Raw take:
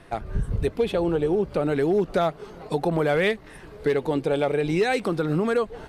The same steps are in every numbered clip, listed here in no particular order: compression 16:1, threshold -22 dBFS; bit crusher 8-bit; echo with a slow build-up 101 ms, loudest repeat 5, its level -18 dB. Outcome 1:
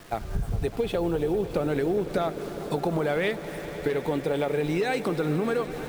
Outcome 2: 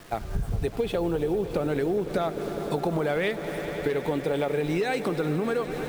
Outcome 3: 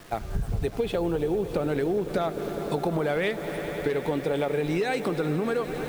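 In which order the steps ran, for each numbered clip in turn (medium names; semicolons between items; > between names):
bit crusher > compression > echo with a slow build-up; bit crusher > echo with a slow build-up > compression; echo with a slow build-up > bit crusher > compression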